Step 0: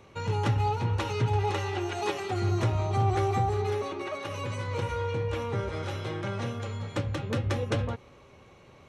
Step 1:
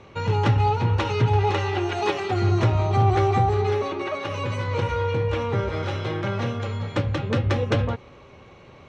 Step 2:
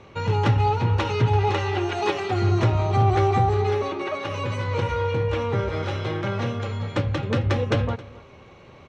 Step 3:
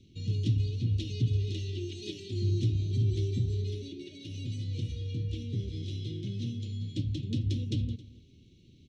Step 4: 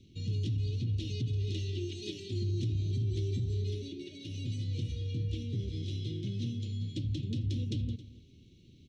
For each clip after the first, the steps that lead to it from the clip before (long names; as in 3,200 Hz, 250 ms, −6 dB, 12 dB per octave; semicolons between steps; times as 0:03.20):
low-pass filter 5,000 Hz 12 dB per octave; level +6.5 dB
single-tap delay 268 ms −20.5 dB
Chebyshev band-stop filter 300–3,400 Hz, order 3; level −6 dB
brickwall limiter −26 dBFS, peak gain reduction 8.5 dB